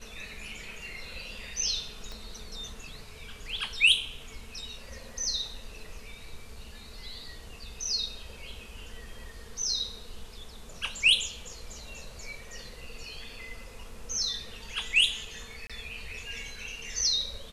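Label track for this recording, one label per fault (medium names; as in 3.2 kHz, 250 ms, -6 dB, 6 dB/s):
2.120000	2.120000	pop -27 dBFS
15.670000	15.700000	dropout 26 ms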